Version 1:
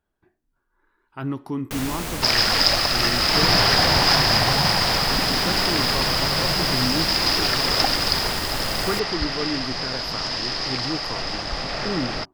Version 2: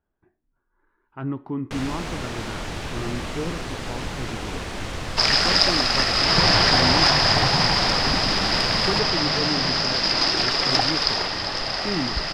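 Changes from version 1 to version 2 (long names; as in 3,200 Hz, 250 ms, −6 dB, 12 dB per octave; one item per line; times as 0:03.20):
speech: add high-frequency loss of the air 440 metres
first sound: add high-frequency loss of the air 85 metres
second sound: entry +2.95 s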